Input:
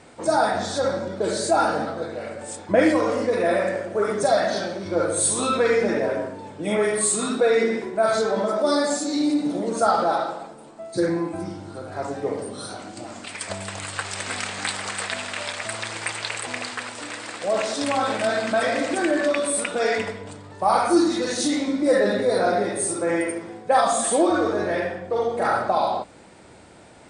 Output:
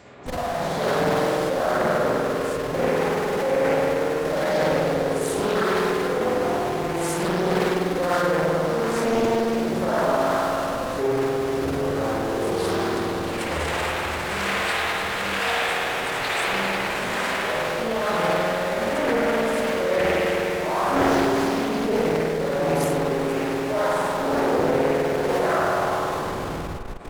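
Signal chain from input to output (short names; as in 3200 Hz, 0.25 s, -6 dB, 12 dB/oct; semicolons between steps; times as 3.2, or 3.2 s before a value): HPF 68 Hz 24 dB/oct; dynamic EQ 7500 Hz, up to -4 dB, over -39 dBFS, Q 0.85; reverse; compressor 5:1, threshold -30 dBFS, peak gain reduction 16 dB; reverse; tremolo 1.1 Hz, depth 70%; spring tank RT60 3.3 s, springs 49 ms, chirp 60 ms, DRR -9 dB; in parallel at -5.5 dB: Schmitt trigger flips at -33.5 dBFS; on the sum: thin delay 0.122 s, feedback 78%, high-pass 4500 Hz, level -23 dB; formant-preserving pitch shift -4 st; Doppler distortion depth 0.61 ms; gain +1.5 dB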